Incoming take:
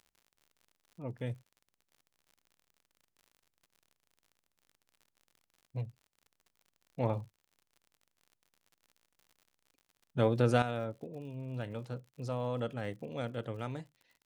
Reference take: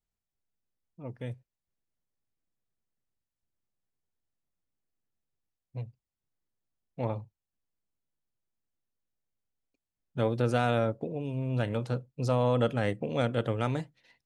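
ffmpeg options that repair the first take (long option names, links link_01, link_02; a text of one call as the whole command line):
ffmpeg -i in.wav -af "adeclick=threshold=4,asetnsamples=nb_out_samples=441:pad=0,asendcmd='10.62 volume volume 9.5dB',volume=0dB" out.wav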